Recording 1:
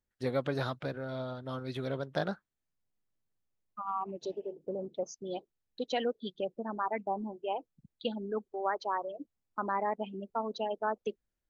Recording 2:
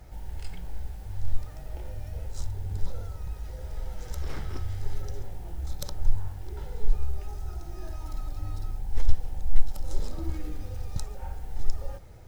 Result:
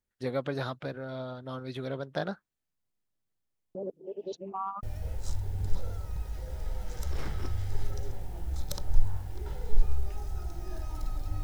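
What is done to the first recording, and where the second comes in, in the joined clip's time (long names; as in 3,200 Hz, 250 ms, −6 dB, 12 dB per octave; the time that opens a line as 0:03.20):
recording 1
0:03.75–0:04.83: reverse
0:04.83: continue with recording 2 from 0:01.94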